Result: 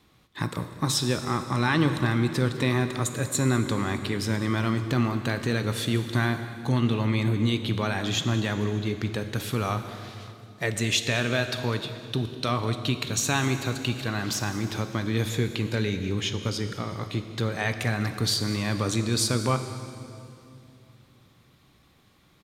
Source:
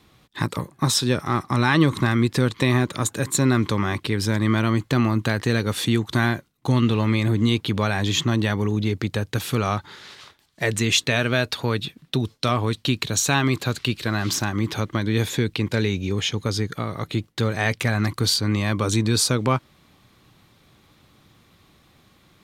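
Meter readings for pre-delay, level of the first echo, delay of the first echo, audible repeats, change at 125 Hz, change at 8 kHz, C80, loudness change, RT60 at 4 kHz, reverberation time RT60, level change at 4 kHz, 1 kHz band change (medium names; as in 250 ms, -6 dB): 7 ms, -18.5 dB, 202 ms, 1, -4.0 dB, -4.5 dB, 9.5 dB, -4.5 dB, 2.4 s, 2.6 s, -4.5 dB, -4.5 dB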